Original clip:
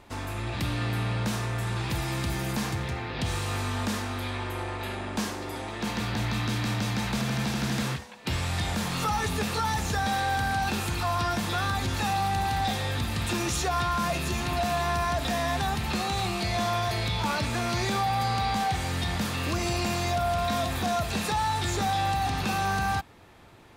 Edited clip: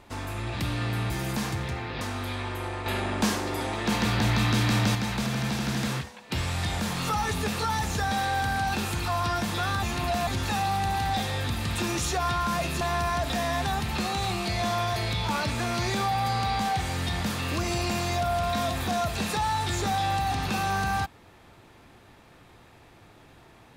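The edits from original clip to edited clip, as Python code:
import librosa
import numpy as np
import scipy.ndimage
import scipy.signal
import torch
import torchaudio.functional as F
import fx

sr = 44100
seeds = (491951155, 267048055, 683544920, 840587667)

y = fx.edit(x, sr, fx.cut(start_s=1.1, length_s=1.2),
    fx.cut(start_s=3.21, length_s=0.75),
    fx.clip_gain(start_s=4.81, length_s=2.09, db=5.0),
    fx.move(start_s=14.32, length_s=0.44, to_s=11.78), tone=tone)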